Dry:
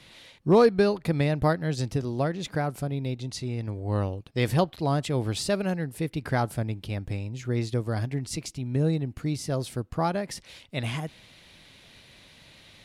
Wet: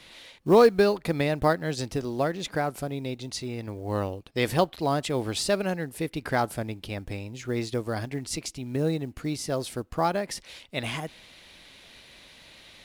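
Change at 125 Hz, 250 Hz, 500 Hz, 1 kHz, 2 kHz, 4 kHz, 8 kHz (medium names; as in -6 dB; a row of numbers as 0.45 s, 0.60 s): -5.5 dB, -1.0 dB, +1.5 dB, +2.0 dB, +2.5 dB, +2.5 dB, +2.5 dB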